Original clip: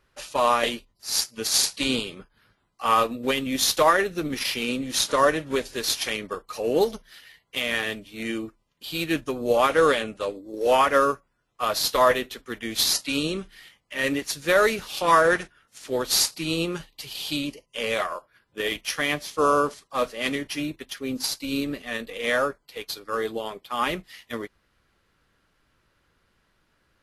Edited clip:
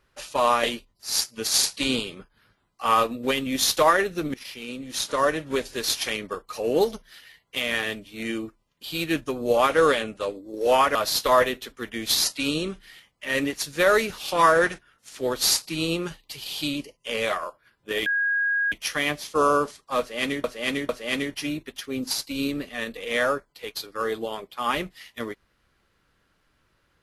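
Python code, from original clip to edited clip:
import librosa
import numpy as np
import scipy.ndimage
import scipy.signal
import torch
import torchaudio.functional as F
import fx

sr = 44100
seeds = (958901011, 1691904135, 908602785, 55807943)

y = fx.edit(x, sr, fx.fade_in_from(start_s=4.34, length_s=1.3, floor_db=-16.0),
    fx.cut(start_s=10.95, length_s=0.69),
    fx.insert_tone(at_s=18.75, length_s=0.66, hz=1640.0, db=-20.5),
    fx.repeat(start_s=20.02, length_s=0.45, count=3), tone=tone)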